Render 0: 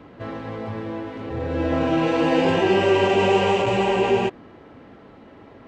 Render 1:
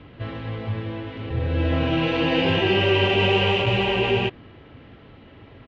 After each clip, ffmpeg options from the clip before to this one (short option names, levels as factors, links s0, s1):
-af "firequalizer=gain_entry='entry(120,0);entry(190,-9);entry(840,-12);entry(3000,0);entry(7800,-25)':delay=0.05:min_phase=1,volume=2.24"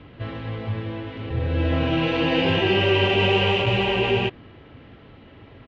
-af anull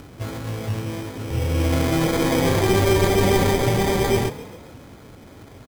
-filter_complex "[0:a]acrusher=samples=16:mix=1:aa=0.000001,acompressor=mode=upward:threshold=0.01:ratio=2.5,asplit=6[s0][s1][s2][s3][s4][s5];[s1]adelay=136,afreqshift=35,volume=0.15[s6];[s2]adelay=272,afreqshift=70,volume=0.0841[s7];[s3]adelay=408,afreqshift=105,volume=0.0468[s8];[s4]adelay=544,afreqshift=140,volume=0.0263[s9];[s5]adelay=680,afreqshift=175,volume=0.0148[s10];[s0][s6][s7][s8][s9][s10]amix=inputs=6:normalize=0,volume=1.19"